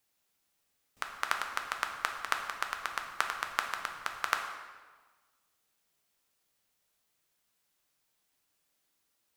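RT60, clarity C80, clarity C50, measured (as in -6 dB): 1.4 s, 7.5 dB, 6.0 dB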